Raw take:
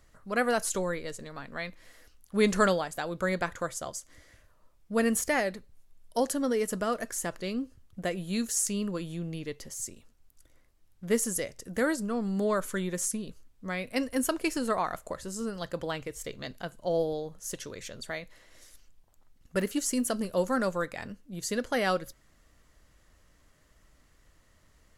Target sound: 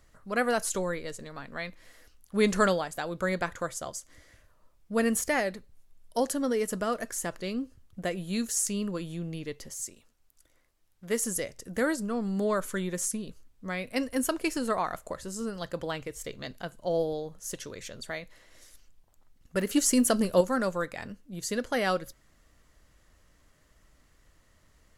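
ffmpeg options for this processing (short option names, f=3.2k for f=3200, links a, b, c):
-filter_complex "[0:a]asettb=1/sr,asplit=3[a][b][c];[a]atrim=end=9.764[d];[b]atrim=start=9.76:end=11.24,asetpts=PTS-STARTPTS,afade=t=in:d=0.004:c=qsin,afade=t=out:st=1.476:d=0.004:c=qsin,lowshelf=f=310:g=-8[e];[c]atrim=start=11.236[f];[d][e]acrossfade=d=0.004:c1=hsin:c2=qsin[g];[g][f]acrossfade=d=0.004:c1=qsin:c2=hsin,asettb=1/sr,asplit=3[h][i][j];[h]atrim=end=19.694[k];[i]atrim=start=19.69:end=20.41,asetpts=PTS-STARTPTS,afade=t=in:d=0.004:c=qsin,afade=t=out:st=0.716:d=0.004:c=qsin,acontrast=44[l];[j]atrim=start=20.406[m];[k][l]acrossfade=d=0.004:c1=hsin:c2=qsin[n];[n][m]acrossfade=d=0.004:c1=qsin:c2=hsin"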